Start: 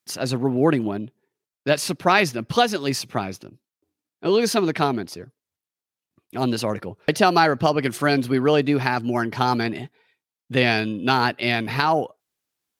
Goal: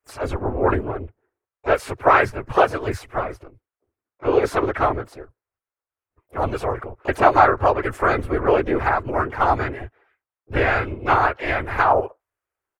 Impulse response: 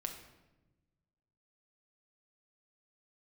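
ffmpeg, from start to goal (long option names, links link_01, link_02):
-filter_complex "[0:a]afftfilt=real='hypot(re,im)*cos(2*PI*random(0))':imag='hypot(re,im)*sin(2*PI*random(1))':win_size=512:overlap=0.75,asplit=3[link_01][link_02][link_03];[link_02]asetrate=37084,aresample=44100,atempo=1.18921,volume=-1dB[link_04];[link_03]asetrate=66075,aresample=44100,atempo=0.66742,volume=-13dB[link_05];[link_01][link_04][link_05]amix=inputs=3:normalize=0,firequalizer=gain_entry='entry(110,0);entry(160,-19);entry(390,-2);entry(1300,2);entry(3800,-19);entry(8300,-14)':delay=0.05:min_phase=1,volume=7dB"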